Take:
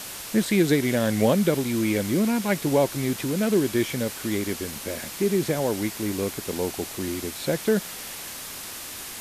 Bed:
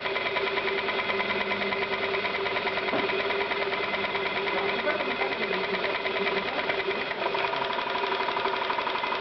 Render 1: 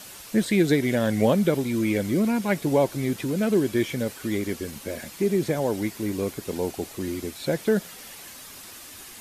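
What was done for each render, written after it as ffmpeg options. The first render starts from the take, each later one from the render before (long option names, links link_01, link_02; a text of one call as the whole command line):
ffmpeg -i in.wav -af "afftdn=noise_reduction=8:noise_floor=-37" out.wav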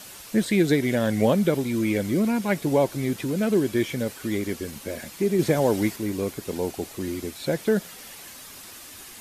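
ffmpeg -i in.wav -filter_complex "[0:a]asplit=3[link_01][link_02][link_03];[link_01]atrim=end=5.392[link_04];[link_02]atrim=start=5.388:end=5.962,asetpts=PTS-STARTPTS,volume=4dB[link_05];[link_03]atrim=start=5.958[link_06];[link_04][link_05]acrossfade=duration=0.004:curve1=hsin:curve2=hsin[link_07];[link_07][link_06]acrossfade=duration=0.004:curve1=hsin:curve2=hsin" out.wav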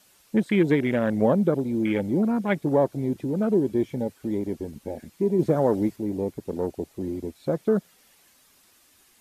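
ffmpeg -i in.wav -af "afwtdn=0.0316,equalizer=frequency=110:width=5.9:gain=-5" out.wav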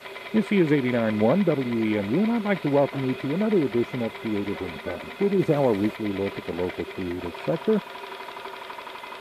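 ffmpeg -i in.wav -i bed.wav -filter_complex "[1:a]volume=-9.5dB[link_01];[0:a][link_01]amix=inputs=2:normalize=0" out.wav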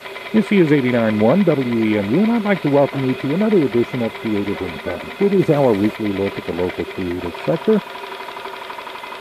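ffmpeg -i in.wav -af "volume=7dB,alimiter=limit=-3dB:level=0:latency=1" out.wav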